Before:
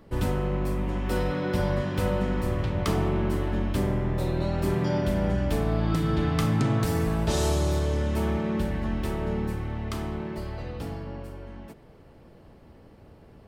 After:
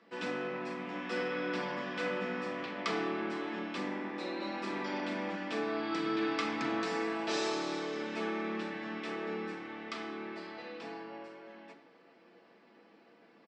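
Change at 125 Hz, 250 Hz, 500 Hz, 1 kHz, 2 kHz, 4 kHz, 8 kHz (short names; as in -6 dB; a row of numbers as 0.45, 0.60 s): -25.0, -9.0, -7.5, -4.0, 0.0, -3.0, -10.5 dB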